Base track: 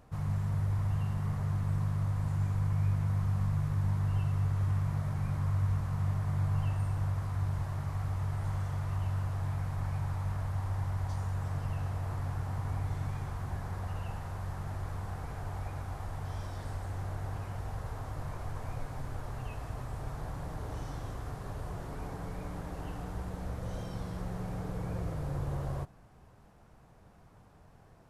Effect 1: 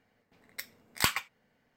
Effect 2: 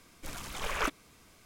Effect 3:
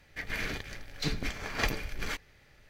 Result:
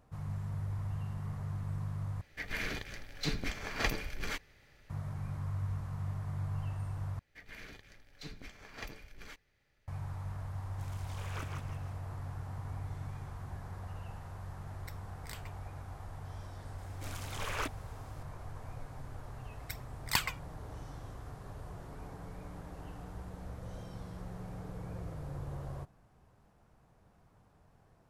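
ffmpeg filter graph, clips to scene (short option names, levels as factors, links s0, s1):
-filter_complex "[3:a]asplit=2[s0][s1];[2:a]asplit=2[s2][s3];[1:a]asplit=2[s4][s5];[0:a]volume=0.473[s6];[s2]asplit=7[s7][s8][s9][s10][s11][s12][s13];[s8]adelay=162,afreqshift=-79,volume=0.631[s14];[s9]adelay=324,afreqshift=-158,volume=0.285[s15];[s10]adelay=486,afreqshift=-237,volume=0.127[s16];[s11]adelay=648,afreqshift=-316,volume=0.0575[s17];[s12]adelay=810,afreqshift=-395,volume=0.026[s18];[s13]adelay=972,afreqshift=-474,volume=0.0116[s19];[s7][s14][s15][s16][s17][s18][s19]amix=inputs=7:normalize=0[s20];[s4]acompressor=threshold=0.0158:ratio=4:attack=6.6:release=627:knee=1:detection=peak[s21];[s3]asoftclip=type=hard:threshold=0.0447[s22];[s5]aphaser=in_gain=1:out_gain=1:delay=2.1:decay=0.58:speed=1.2:type=sinusoidal[s23];[s6]asplit=3[s24][s25][s26];[s24]atrim=end=2.214[s27];[s0]atrim=end=2.69,asetpts=PTS-STARTPTS,volume=0.75[s28];[s25]atrim=start=4.896:end=7.194[s29];[s1]atrim=end=2.69,asetpts=PTS-STARTPTS,volume=0.178[s30];[s26]atrim=start=9.876[s31];[s20]atrim=end=1.45,asetpts=PTS-STARTPTS,volume=0.2,afade=t=in:d=0.004:c=hsin,afade=t=out:st=1.446:d=0.004:c=hsin,adelay=10550[s32];[s21]atrim=end=1.76,asetpts=PTS-STARTPTS,volume=0.335,afade=t=in:d=0.004:c=hsin,afade=t=out:st=1.756:d=0.004:c=hsin,adelay=14290[s33];[s22]atrim=end=1.45,asetpts=PTS-STARTPTS,volume=0.668,afade=t=in:d=0.004:c=hsin,afade=t=out:st=1.446:d=0.004:c=hsin,adelay=16780[s34];[s23]atrim=end=1.76,asetpts=PTS-STARTPTS,volume=0.531,afade=t=in:d=0.004:c=hsin,afade=t=out:st=1.756:d=0.004:c=hsin,adelay=19110[s35];[s27][s28]acrossfade=d=0.004:c1=hsin:c2=hsin[s36];[s36][s29]acrossfade=d=0.004:c1=hsin:c2=hsin[s37];[s37][s30]acrossfade=d=0.004:c1=hsin:c2=hsin[s38];[s38][s31]acrossfade=d=0.004:c1=hsin:c2=hsin[s39];[s39][s32][s33][s34][s35]amix=inputs=5:normalize=0"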